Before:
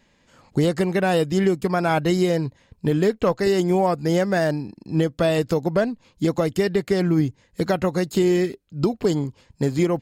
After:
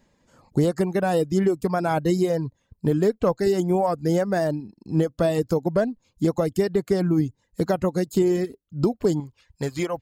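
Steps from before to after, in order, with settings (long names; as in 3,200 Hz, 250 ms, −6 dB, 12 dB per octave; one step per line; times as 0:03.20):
reverb reduction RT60 0.66 s
parametric band 2,700 Hz −9 dB 1.7 octaves, from 0:09.20 230 Hz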